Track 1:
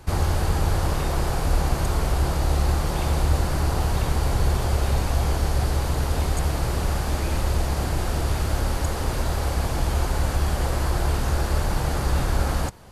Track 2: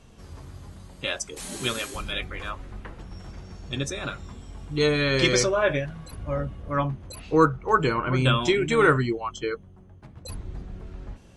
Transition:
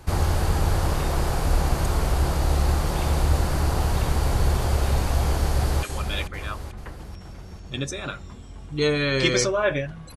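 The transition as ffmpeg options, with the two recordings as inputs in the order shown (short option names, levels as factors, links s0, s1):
-filter_complex "[0:a]apad=whole_dur=10.16,atrim=end=10.16,atrim=end=5.832[s0];[1:a]atrim=start=1.818:end=6.15[s1];[s0][s1]acrossfade=d=0.004:c1=hsin:c2=hsin,asplit=2[s2][s3];[s3]afade=t=in:st=5.45:d=0.01,afade=t=out:st=5.83:d=0.01,aecho=0:1:440|880|1320|1760|2200|2640:0.446684|0.223342|0.111671|0.0558354|0.0279177|0.0139589[s4];[s2][s4]amix=inputs=2:normalize=0"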